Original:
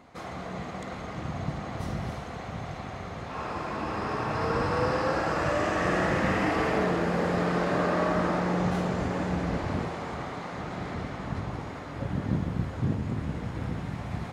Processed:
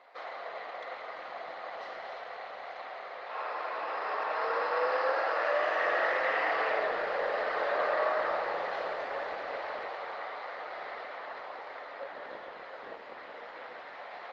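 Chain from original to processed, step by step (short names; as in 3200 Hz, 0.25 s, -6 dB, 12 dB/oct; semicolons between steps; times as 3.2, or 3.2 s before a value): elliptic band-pass 520–4400 Hz, stop band 70 dB; bell 1900 Hz +4 dB 0.24 oct; Opus 24 kbps 48000 Hz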